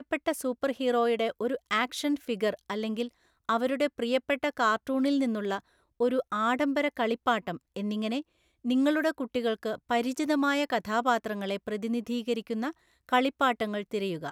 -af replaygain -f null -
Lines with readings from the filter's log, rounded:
track_gain = +9.4 dB
track_peak = 0.223